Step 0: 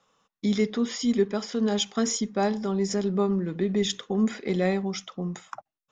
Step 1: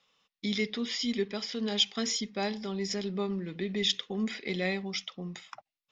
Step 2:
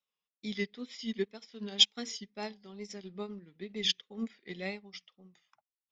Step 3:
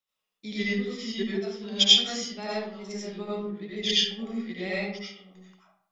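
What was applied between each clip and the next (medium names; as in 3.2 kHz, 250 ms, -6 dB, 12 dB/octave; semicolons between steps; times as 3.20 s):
high-order bell 3.2 kHz +11.5 dB; trim -8 dB
wow and flutter 100 cents; upward expansion 2.5:1, over -40 dBFS; trim +5 dB
algorithmic reverb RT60 0.7 s, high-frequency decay 0.55×, pre-delay 50 ms, DRR -8 dB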